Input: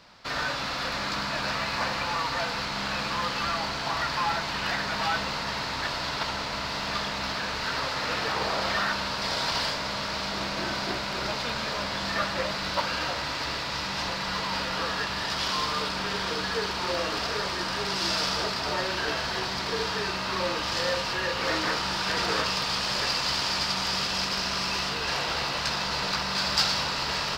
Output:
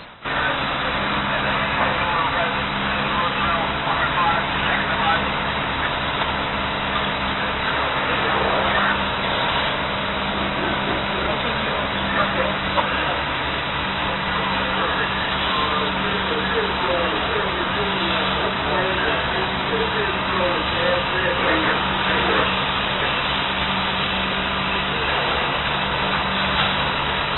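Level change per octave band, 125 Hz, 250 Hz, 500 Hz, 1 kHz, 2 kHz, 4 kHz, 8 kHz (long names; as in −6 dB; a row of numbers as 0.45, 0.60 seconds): +10.0 dB, +9.5 dB, +9.0 dB, +9.0 dB, +9.0 dB, +4.5 dB, below −40 dB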